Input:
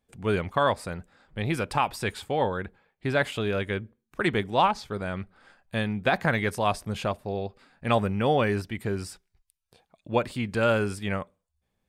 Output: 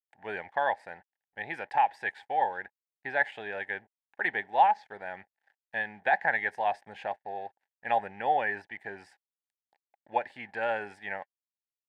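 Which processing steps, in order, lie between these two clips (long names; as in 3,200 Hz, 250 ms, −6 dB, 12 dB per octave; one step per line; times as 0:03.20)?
dead-zone distortion −51.5 dBFS
pair of resonant band-passes 1,200 Hz, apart 1.1 octaves
level +6 dB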